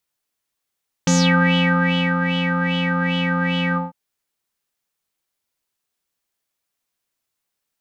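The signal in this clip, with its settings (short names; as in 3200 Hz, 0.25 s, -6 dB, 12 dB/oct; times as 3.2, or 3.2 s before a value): synth patch with filter wobble F3, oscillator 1 square, oscillator 2 triangle, interval +7 st, oscillator 2 level -2.5 dB, sub -25 dB, noise -21 dB, filter lowpass, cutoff 730 Hz, Q 8.9, filter envelope 3 oct, filter decay 0.30 s, filter sustain 50%, attack 2.6 ms, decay 1.12 s, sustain -6 dB, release 0.17 s, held 2.68 s, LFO 2.5 Hz, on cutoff 0.6 oct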